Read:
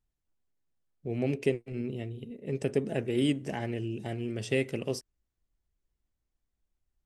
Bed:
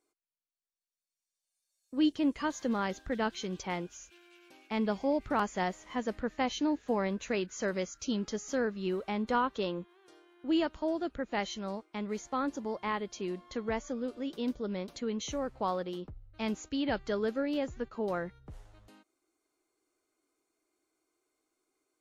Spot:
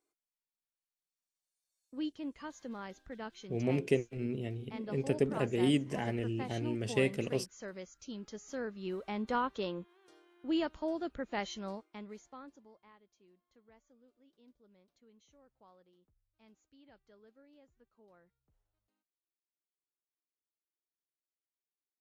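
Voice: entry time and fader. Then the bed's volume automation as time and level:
2.45 s, -1.5 dB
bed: 1.83 s -5.5 dB
2.12 s -12 dB
8.08 s -12 dB
9.22 s -3.5 dB
11.70 s -3.5 dB
13.00 s -30 dB

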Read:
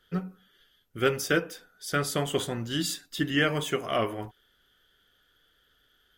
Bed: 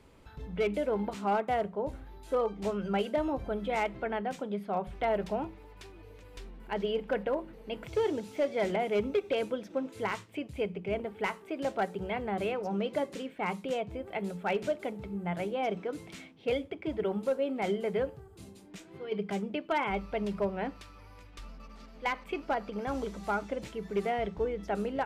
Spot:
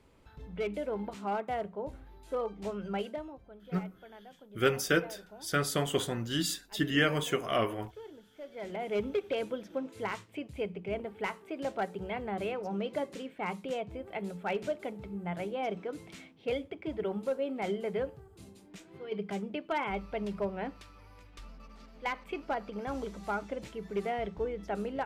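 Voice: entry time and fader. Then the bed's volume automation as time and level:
3.60 s, -2.0 dB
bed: 3.05 s -4.5 dB
3.41 s -18.5 dB
8.35 s -18.5 dB
8.95 s -2.5 dB

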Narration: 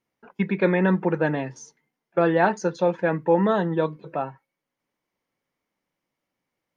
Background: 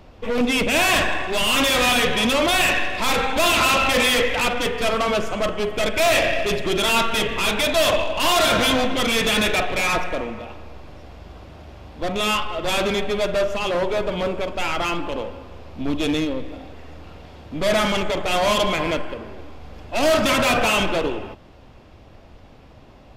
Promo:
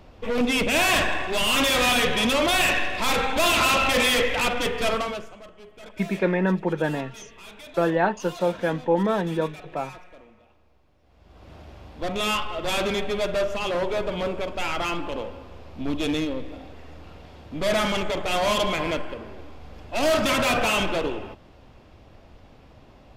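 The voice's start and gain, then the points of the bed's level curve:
5.60 s, -2.0 dB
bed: 4.94 s -2.5 dB
5.44 s -23 dB
10.99 s -23 dB
11.52 s -3.5 dB

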